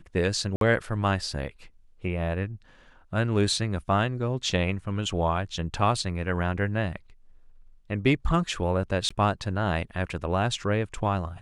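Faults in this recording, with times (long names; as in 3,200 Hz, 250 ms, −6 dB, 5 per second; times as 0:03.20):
0:00.56–0:00.61: drop-out 52 ms
0:09.09–0:09.11: drop-out 15 ms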